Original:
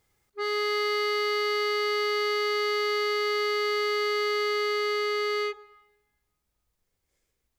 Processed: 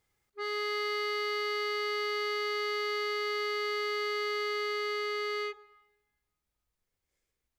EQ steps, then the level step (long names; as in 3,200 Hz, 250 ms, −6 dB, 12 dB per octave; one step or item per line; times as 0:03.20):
parametric band 2,100 Hz +2.5 dB 2.2 octaves
−7.0 dB